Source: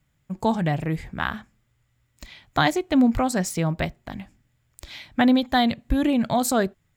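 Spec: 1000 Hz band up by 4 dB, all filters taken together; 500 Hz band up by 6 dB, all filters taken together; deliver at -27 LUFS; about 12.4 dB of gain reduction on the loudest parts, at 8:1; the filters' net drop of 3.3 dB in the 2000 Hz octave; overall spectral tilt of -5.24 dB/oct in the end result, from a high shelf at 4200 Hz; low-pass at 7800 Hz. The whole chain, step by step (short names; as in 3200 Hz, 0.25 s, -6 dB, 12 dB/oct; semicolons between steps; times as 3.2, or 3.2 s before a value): LPF 7800 Hz; bell 500 Hz +7 dB; bell 1000 Hz +3 dB; bell 2000 Hz -7 dB; high shelf 4200 Hz +6.5 dB; compressor 8:1, threshold -25 dBFS; gain +4 dB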